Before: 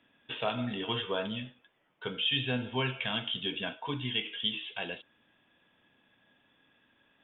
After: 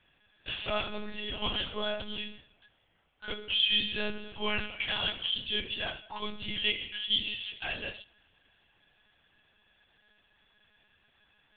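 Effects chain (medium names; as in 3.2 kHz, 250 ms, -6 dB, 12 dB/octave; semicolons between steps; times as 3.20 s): tilt EQ +2 dB/octave; time stretch by phase-locked vocoder 1.6×; reverberation, pre-delay 18 ms, DRR 20 dB; monotone LPC vocoder at 8 kHz 210 Hz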